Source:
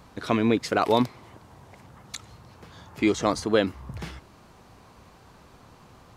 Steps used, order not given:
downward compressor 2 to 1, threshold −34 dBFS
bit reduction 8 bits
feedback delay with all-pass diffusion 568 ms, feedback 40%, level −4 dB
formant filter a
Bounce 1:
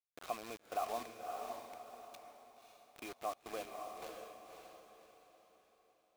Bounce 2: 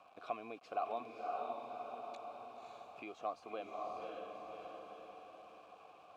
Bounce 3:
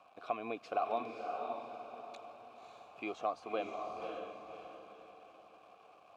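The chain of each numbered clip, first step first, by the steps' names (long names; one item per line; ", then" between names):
downward compressor, then formant filter, then bit reduction, then feedback delay with all-pass diffusion
feedback delay with all-pass diffusion, then downward compressor, then bit reduction, then formant filter
bit reduction, then formant filter, then downward compressor, then feedback delay with all-pass diffusion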